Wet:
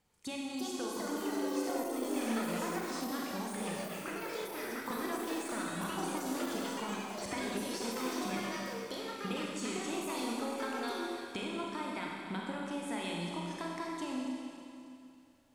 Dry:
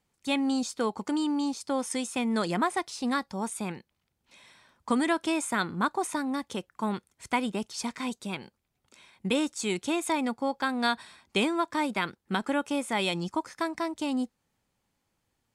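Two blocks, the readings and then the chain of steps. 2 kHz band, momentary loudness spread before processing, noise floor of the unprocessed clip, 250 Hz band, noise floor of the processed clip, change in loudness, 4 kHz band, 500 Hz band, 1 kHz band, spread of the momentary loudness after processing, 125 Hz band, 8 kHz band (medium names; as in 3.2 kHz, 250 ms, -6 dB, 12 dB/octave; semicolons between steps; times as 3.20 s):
-7.5 dB, 8 LU, -79 dBFS, -7.5 dB, -54 dBFS, -7.5 dB, -6.5 dB, -5.5 dB, -8.0 dB, 5 LU, -5.5 dB, -5.0 dB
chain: compression 10:1, threshold -39 dBFS, peak gain reduction 17.5 dB; Schroeder reverb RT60 2.6 s, combs from 31 ms, DRR -2.5 dB; ever faster or slower copies 404 ms, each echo +5 st, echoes 3; de-esser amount 95%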